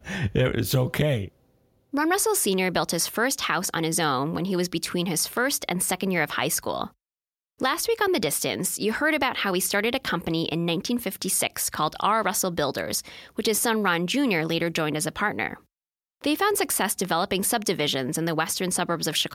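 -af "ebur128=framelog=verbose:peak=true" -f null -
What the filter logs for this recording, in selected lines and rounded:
Integrated loudness:
  I:         -24.6 LUFS
  Threshold: -34.8 LUFS
Loudness range:
  LRA:         1.4 LU
  Threshold: -44.9 LUFS
  LRA low:   -25.7 LUFS
  LRA high:  -24.2 LUFS
True peak:
  Peak:       -6.9 dBFS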